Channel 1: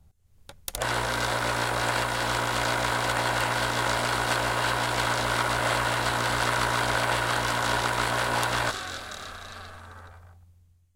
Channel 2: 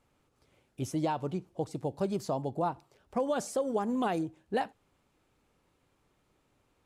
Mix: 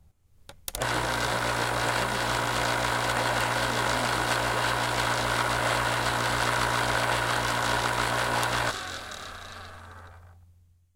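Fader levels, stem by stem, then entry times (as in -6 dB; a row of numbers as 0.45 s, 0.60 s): -0.5 dB, -9.5 dB; 0.00 s, 0.00 s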